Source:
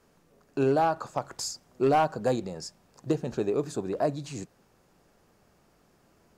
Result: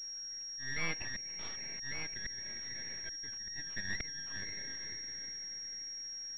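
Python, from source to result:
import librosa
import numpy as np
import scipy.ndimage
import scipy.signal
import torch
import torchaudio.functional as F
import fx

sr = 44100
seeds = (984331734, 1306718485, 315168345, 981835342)

y = fx.band_shuffle(x, sr, order='2143')
y = fx.high_shelf(y, sr, hz=2000.0, db=-9.5, at=(1.93, 3.32))
y = fx.echo_diffused(y, sr, ms=482, feedback_pct=45, wet_db=-14)
y = np.maximum(y, 0.0)
y = fx.auto_swell(y, sr, attack_ms=686.0)
y = fx.pwm(y, sr, carrier_hz=5600.0)
y = y * 10.0 ** (2.0 / 20.0)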